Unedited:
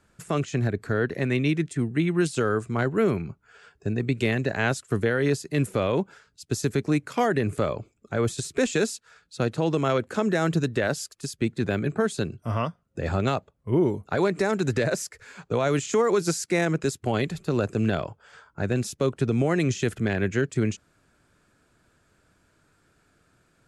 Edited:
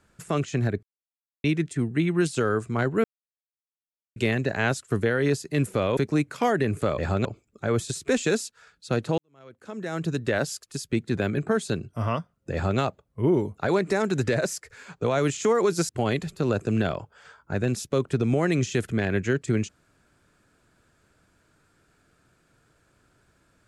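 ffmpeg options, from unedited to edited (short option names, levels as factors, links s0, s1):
-filter_complex "[0:a]asplit=10[s0][s1][s2][s3][s4][s5][s6][s7][s8][s9];[s0]atrim=end=0.83,asetpts=PTS-STARTPTS,afade=t=out:st=0.826:d=0.004:c=hsin[s10];[s1]atrim=start=0.83:end=1.44,asetpts=PTS-STARTPTS,volume=0[s11];[s2]atrim=start=1.44:end=3.04,asetpts=PTS-STARTPTS,afade=t=in:d=0.004:c=hsin,afade=t=out:st=1.596:d=0.004:c=hsin[s12];[s3]atrim=start=3.04:end=4.16,asetpts=PTS-STARTPTS,volume=0[s13];[s4]atrim=start=4.16:end=5.972,asetpts=PTS-STARTPTS,afade=t=in:d=0.004:c=hsin[s14];[s5]atrim=start=6.728:end=7.742[s15];[s6]atrim=start=13.008:end=13.282[s16];[s7]atrim=start=7.738:end=9.67,asetpts=PTS-STARTPTS,afade=t=out:st=1.928:d=0.004:c=hsin[s17];[s8]atrim=start=9.67:end=16.382,asetpts=PTS-STARTPTS,afade=t=in:d=1.13:c=qua[s18];[s9]atrim=start=16.968[s19];[s10][s11][s12][s13][s14]concat=n=5:v=0:a=1[s20];[s20][s15]acrossfade=d=0.004:c1=hsin:c2=hsin[s21];[s21][s16]acrossfade=d=0.004:c1=hsin:c2=hsin[s22];[s17][s18]concat=n=2:v=0:a=1[s23];[s22][s23]acrossfade=d=0.004:c1=hsin:c2=hsin[s24];[s24][s19]acrossfade=d=0.004:c1=hsin:c2=hsin"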